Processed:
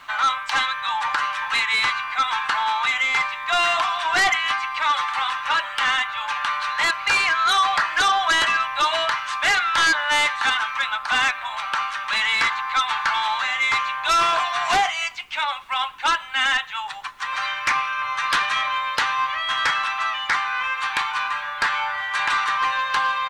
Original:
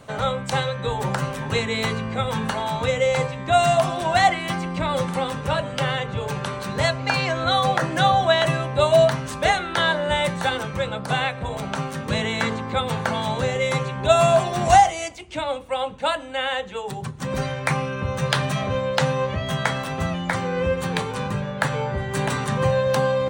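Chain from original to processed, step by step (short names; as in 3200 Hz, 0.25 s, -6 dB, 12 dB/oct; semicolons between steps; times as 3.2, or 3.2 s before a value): inverse Chebyshev high-pass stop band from 500 Hz, stop band 40 dB; soft clip -16 dBFS, distortion -17 dB; LPF 3500 Hz 12 dB/oct; comb 6.8 ms, depth 35%; sine folder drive 6 dB, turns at -14.5 dBFS; added noise pink -60 dBFS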